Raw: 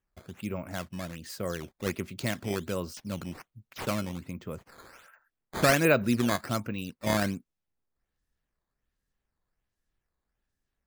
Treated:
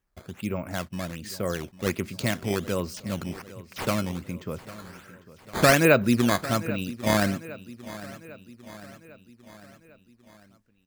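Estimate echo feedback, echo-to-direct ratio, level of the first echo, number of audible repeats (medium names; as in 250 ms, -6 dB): 56%, -15.5 dB, -17.0 dB, 4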